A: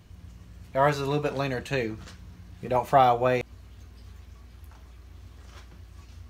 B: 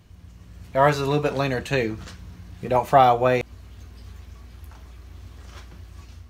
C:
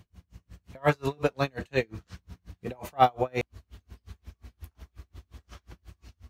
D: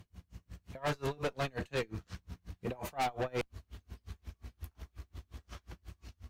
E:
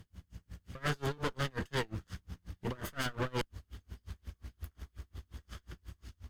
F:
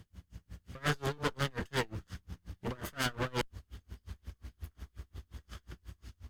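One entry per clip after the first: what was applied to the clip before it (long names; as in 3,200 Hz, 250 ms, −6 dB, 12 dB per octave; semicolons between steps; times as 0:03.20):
automatic gain control gain up to 5 dB
tremolo with a sine in dB 5.6 Hz, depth 37 dB
tube saturation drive 30 dB, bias 0.4; level +1 dB
lower of the sound and its delayed copy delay 0.61 ms; level +1 dB
harmonic generator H 2 −6 dB, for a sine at −23 dBFS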